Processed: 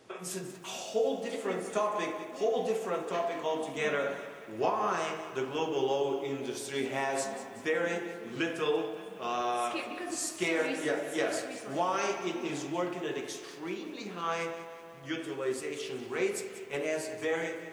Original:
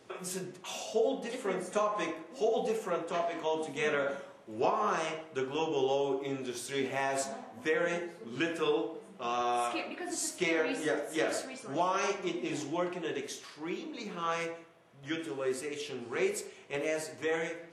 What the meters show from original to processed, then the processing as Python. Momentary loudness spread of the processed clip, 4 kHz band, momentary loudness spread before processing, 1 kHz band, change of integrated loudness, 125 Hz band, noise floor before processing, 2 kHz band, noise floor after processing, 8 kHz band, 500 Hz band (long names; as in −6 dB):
9 LU, +0.5 dB, 9 LU, +0.5 dB, +0.5 dB, +0.5 dB, −53 dBFS, +0.5 dB, −46 dBFS, +0.5 dB, +0.5 dB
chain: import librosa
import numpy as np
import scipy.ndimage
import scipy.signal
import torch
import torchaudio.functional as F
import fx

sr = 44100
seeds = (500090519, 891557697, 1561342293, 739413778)

y = fx.rev_spring(x, sr, rt60_s=3.3, pass_ms=(54,), chirp_ms=70, drr_db=12.5)
y = fx.echo_crushed(y, sr, ms=188, feedback_pct=55, bits=9, wet_db=-13)